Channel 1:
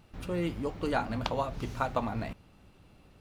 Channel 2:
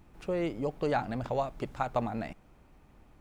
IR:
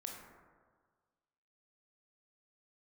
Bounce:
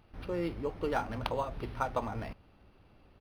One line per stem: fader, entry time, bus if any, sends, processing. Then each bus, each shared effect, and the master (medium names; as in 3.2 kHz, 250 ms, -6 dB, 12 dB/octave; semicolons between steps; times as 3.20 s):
-1.5 dB, 0.00 s, no send, none
-11.5 dB, 0.8 ms, polarity flipped, no send, none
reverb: none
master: peaking EQ 160 Hz -5 dB 1.1 oct; decimation joined by straight lines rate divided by 6×